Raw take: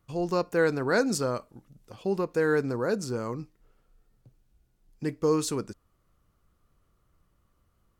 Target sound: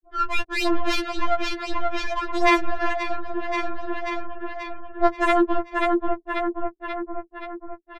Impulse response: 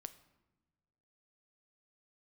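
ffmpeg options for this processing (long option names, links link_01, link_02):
-filter_complex "[0:a]asplit=2[link_01][link_02];[1:a]atrim=start_sample=2205[link_03];[link_02][link_03]afir=irnorm=-1:irlink=0,volume=6.5dB[link_04];[link_01][link_04]amix=inputs=2:normalize=0,afftfilt=real='re*gte(hypot(re,im),0.282)':imag='im*gte(hypot(re,im),0.282)':win_size=1024:overlap=0.75,bass=frequency=250:gain=8,treble=frequency=4000:gain=-3,aeval=exprs='0.531*sin(PI/2*5.62*val(0)/0.531)':channel_layout=same,aecho=1:1:534|1068|1602|2136|2670|3204:0.299|0.167|0.0936|0.0524|0.0294|0.0164,acompressor=threshold=-15dB:ratio=5,asetrate=49501,aresample=44100,atempo=0.890899,asoftclip=type=tanh:threshold=-13.5dB,bandreject=frequency=50:width_type=h:width=6,bandreject=frequency=100:width_type=h:width=6,bandreject=frequency=150:width_type=h:width=6,bandreject=frequency=200:width_type=h:width=6,bandreject=frequency=250:width_type=h:width=6,bandreject=frequency=300:width_type=h:width=6,acontrast=50,afftfilt=real='re*4*eq(mod(b,16),0)':imag='im*4*eq(mod(b,16),0)':win_size=2048:overlap=0.75,volume=-7.5dB"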